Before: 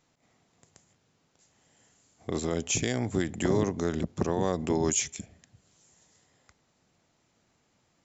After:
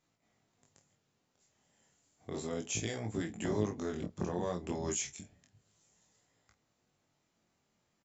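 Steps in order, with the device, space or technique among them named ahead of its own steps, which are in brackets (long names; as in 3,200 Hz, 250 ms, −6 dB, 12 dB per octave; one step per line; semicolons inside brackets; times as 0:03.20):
double-tracked vocal (double-tracking delay 28 ms −8.5 dB; chorus effect 0.32 Hz, delay 18 ms, depth 5.1 ms)
level −5.5 dB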